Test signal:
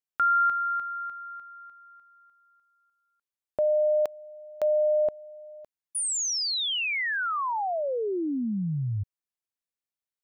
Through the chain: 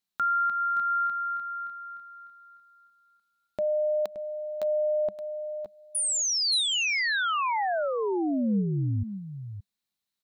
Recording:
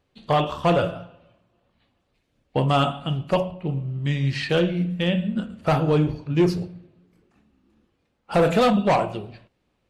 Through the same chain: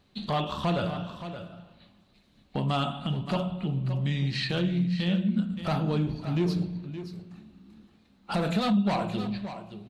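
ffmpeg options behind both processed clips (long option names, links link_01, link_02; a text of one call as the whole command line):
ffmpeg -i in.wav -filter_complex "[0:a]equalizer=frequency=200:width_type=o:width=0.33:gain=11,equalizer=frequency=500:width_type=o:width=0.33:gain=-6,equalizer=frequency=4000:width_type=o:width=0.33:gain=10,acompressor=threshold=-31dB:ratio=3:attack=0.2:release=262:knee=1:detection=rms,asplit=2[link_01][link_02];[link_02]aecho=0:1:572:0.282[link_03];[link_01][link_03]amix=inputs=2:normalize=0,volume=5dB" out.wav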